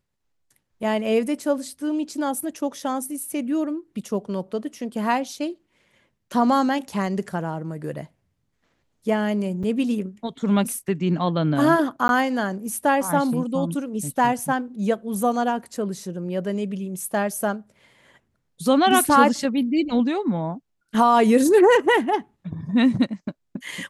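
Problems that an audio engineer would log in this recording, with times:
9.63–9.64 gap 5.8 ms
12.08–12.09 gap

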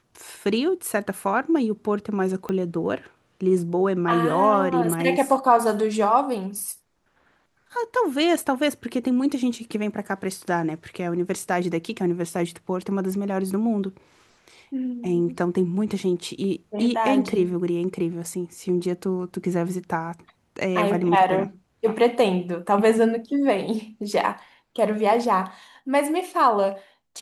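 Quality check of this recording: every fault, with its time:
2.49 pop -16 dBFS

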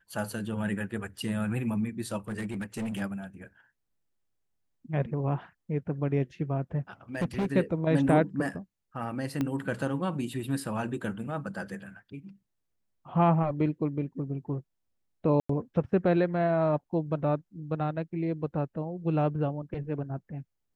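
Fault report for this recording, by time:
2.28–3.02 clipped -29.5 dBFS
7.15–7.46 clipped -24.5 dBFS
9.41 pop -17 dBFS
15.4–15.49 gap 94 ms

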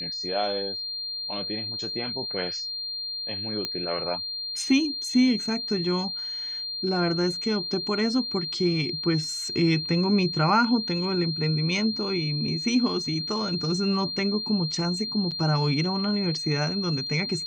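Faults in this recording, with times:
tone 4200 Hz -30 dBFS
3.65 pop -14 dBFS
15.31–15.32 gap 6.8 ms

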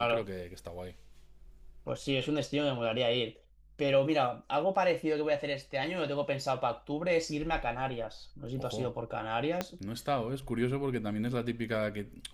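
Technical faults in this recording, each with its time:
9.61 pop -16 dBFS

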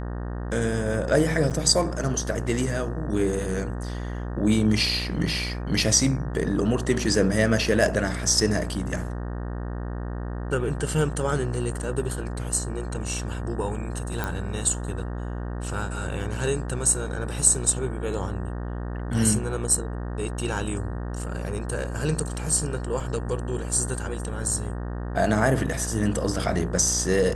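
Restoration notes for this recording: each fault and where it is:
buzz 60 Hz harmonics 31 -31 dBFS
1.5–1.51 gap 7.6 ms
14.24 pop
23 gap 3.7 ms

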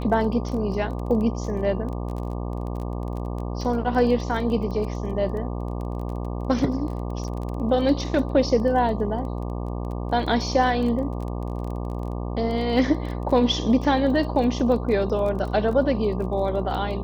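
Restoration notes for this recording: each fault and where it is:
buzz 60 Hz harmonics 20 -29 dBFS
crackle 20/s -31 dBFS

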